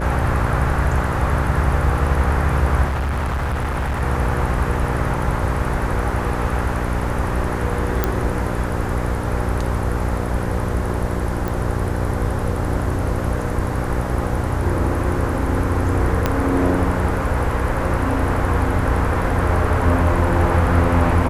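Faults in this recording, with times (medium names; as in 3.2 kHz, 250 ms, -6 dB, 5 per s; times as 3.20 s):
buzz 60 Hz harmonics 10 -24 dBFS
2.87–4.03 s: clipped -18.5 dBFS
6.11 s: dropout 2 ms
8.04 s: pop -4 dBFS
11.48 s: pop
16.26 s: pop -4 dBFS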